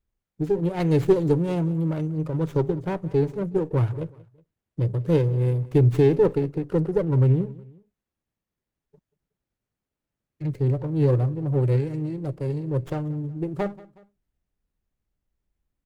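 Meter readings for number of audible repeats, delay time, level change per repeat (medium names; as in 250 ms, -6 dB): 2, 184 ms, -6.5 dB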